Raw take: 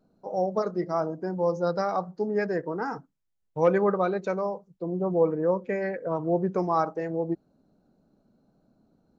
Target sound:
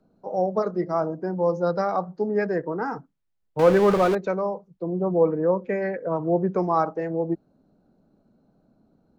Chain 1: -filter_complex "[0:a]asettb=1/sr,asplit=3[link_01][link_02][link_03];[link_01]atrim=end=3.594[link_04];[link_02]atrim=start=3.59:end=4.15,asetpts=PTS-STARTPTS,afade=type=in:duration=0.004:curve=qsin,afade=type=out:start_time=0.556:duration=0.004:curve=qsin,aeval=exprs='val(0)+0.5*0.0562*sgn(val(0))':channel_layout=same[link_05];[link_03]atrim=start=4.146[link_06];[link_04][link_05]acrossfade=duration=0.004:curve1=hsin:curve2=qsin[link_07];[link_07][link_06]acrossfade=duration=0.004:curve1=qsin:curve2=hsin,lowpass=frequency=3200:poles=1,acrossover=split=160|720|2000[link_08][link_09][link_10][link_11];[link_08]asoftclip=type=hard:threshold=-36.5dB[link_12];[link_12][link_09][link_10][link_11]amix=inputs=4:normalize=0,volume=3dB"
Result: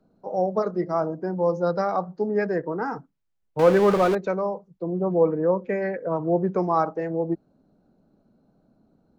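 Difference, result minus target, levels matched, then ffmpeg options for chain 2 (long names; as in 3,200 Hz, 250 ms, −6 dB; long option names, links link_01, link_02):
hard clipping: distortion +18 dB
-filter_complex "[0:a]asettb=1/sr,asplit=3[link_01][link_02][link_03];[link_01]atrim=end=3.594[link_04];[link_02]atrim=start=3.59:end=4.15,asetpts=PTS-STARTPTS,afade=type=in:duration=0.004:curve=qsin,afade=type=out:start_time=0.556:duration=0.004:curve=qsin,aeval=exprs='val(0)+0.5*0.0562*sgn(val(0))':channel_layout=same[link_05];[link_03]atrim=start=4.146[link_06];[link_04][link_05]acrossfade=duration=0.004:curve1=hsin:curve2=qsin[link_07];[link_07][link_06]acrossfade=duration=0.004:curve1=qsin:curve2=hsin,lowpass=frequency=3200:poles=1,acrossover=split=160|720|2000[link_08][link_09][link_10][link_11];[link_08]asoftclip=type=hard:threshold=-30dB[link_12];[link_12][link_09][link_10][link_11]amix=inputs=4:normalize=0,volume=3dB"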